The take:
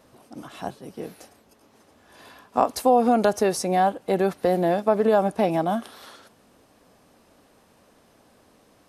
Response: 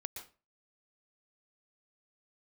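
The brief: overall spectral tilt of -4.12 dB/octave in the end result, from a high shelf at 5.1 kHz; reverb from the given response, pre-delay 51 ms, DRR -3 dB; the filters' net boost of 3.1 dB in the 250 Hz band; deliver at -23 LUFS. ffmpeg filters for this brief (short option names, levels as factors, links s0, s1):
-filter_complex "[0:a]equalizer=f=250:t=o:g=4,highshelf=f=5100:g=-5.5,asplit=2[s0][s1];[1:a]atrim=start_sample=2205,adelay=51[s2];[s1][s2]afir=irnorm=-1:irlink=0,volume=1.78[s3];[s0][s3]amix=inputs=2:normalize=0,volume=0.473"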